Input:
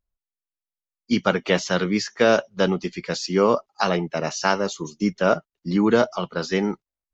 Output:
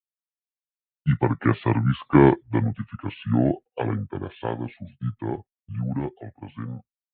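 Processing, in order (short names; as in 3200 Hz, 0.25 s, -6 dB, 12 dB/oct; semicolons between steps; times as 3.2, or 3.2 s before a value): Doppler pass-by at 2.22, 10 m/s, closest 2.1 m; LPF 4100 Hz 24 dB/oct; gate with hold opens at -53 dBFS; bell 190 Hz +5 dB 1.8 oct; AGC gain up to 13 dB; spectral noise reduction 18 dB; pitch shift -8.5 st; gain -1 dB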